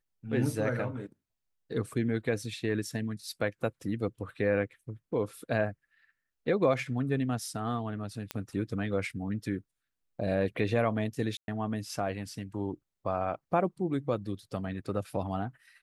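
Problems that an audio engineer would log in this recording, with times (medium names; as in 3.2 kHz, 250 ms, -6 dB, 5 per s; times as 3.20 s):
8.31 s: pop -17 dBFS
11.37–11.48 s: dropout 110 ms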